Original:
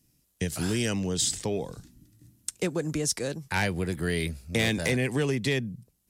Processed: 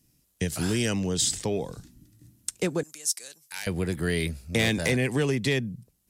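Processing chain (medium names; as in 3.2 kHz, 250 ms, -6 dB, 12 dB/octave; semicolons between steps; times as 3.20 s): 2.83–3.67 s: differentiator; trim +1.5 dB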